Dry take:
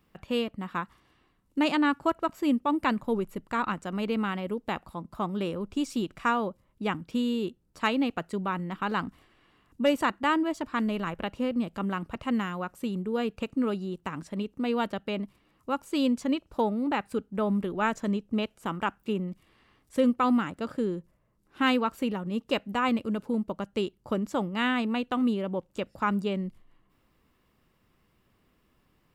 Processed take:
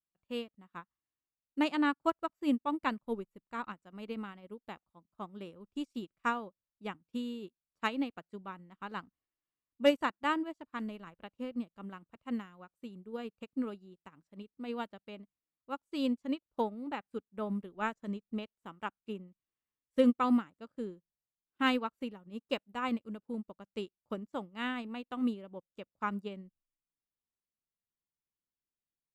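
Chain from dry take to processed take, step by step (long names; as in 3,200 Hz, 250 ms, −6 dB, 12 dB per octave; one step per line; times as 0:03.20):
expander for the loud parts 2.5 to 1, over −44 dBFS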